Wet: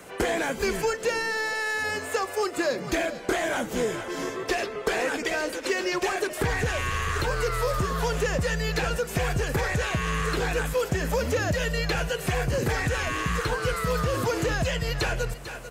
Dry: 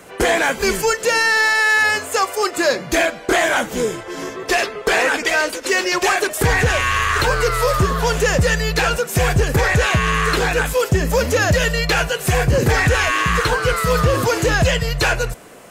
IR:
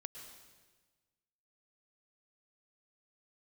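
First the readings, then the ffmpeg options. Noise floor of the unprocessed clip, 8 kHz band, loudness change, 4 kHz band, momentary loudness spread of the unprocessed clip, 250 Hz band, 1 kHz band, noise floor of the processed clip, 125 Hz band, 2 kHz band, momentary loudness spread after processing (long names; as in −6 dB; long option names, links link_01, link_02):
−34 dBFS, −11.0 dB, −10.0 dB, −10.5 dB, 4 LU, −7.0 dB, −10.5 dB, −38 dBFS, −9.0 dB, −11.5 dB, 2 LU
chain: -filter_complex "[0:a]asplit=2[link_01][link_02];[link_02]aecho=0:1:443:0.133[link_03];[link_01][link_03]amix=inputs=2:normalize=0,acrossover=split=530|4200[link_04][link_05][link_06];[link_04]acompressor=threshold=-22dB:ratio=4[link_07];[link_05]acompressor=threshold=-26dB:ratio=4[link_08];[link_06]acompressor=threshold=-37dB:ratio=4[link_09];[link_07][link_08][link_09]amix=inputs=3:normalize=0,volume=-3.5dB"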